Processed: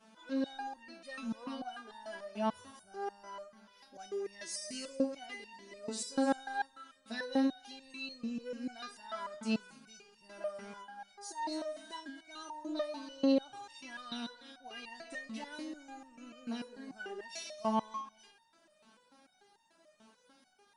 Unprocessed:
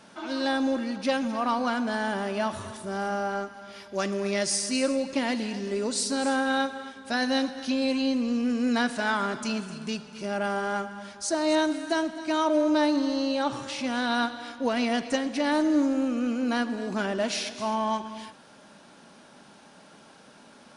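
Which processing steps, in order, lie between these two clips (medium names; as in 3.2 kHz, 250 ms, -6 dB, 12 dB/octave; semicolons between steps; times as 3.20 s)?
resonator arpeggio 6.8 Hz 220–920 Hz; trim +1.5 dB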